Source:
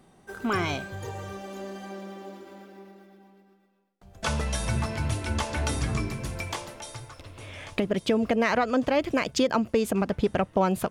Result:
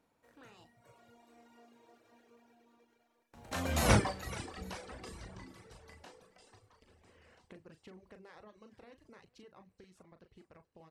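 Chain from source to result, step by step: spectral levelling over time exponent 0.6; Doppler pass-by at 3.92 s, 58 m/s, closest 4.5 m; doubling 38 ms -6.5 dB; thinning echo 428 ms, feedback 39%, high-pass 420 Hz, level -13.5 dB; reverb removal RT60 1.2 s

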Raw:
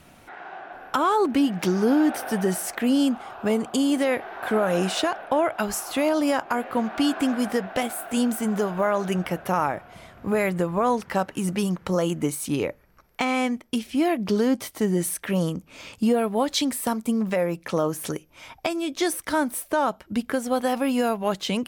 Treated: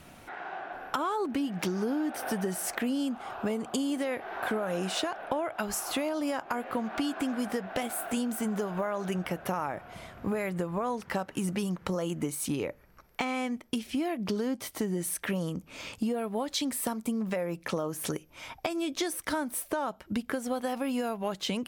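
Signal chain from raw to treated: compression 6:1, threshold -28 dBFS, peak gain reduction 11 dB

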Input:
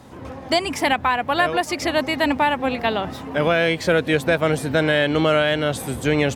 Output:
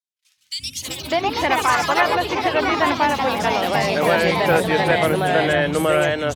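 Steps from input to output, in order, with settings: gate -33 dBFS, range -38 dB; ever faster or slower copies 199 ms, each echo +3 st, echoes 3; three bands offset in time highs, lows, mids 370/600 ms, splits 240/3300 Hz

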